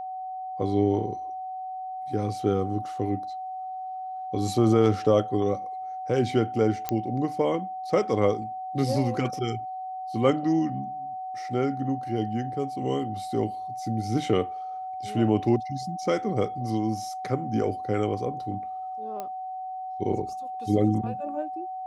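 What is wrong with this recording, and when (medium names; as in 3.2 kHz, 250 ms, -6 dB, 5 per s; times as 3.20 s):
whine 750 Hz -32 dBFS
6.89 s: pop -12 dBFS
19.20 s: pop -20 dBFS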